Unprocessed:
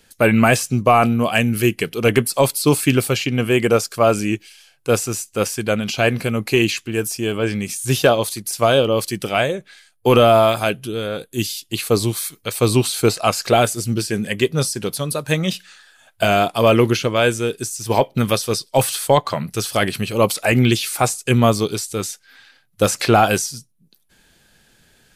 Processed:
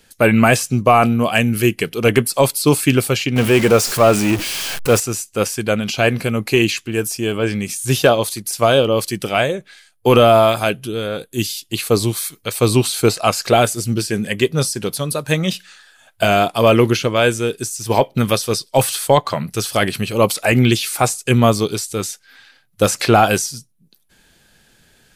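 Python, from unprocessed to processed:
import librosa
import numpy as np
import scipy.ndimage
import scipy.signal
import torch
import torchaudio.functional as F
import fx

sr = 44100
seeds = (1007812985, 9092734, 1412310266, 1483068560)

y = fx.zero_step(x, sr, step_db=-20.0, at=(3.36, 5.0))
y = F.gain(torch.from_numpy(y), 1.5).numpy()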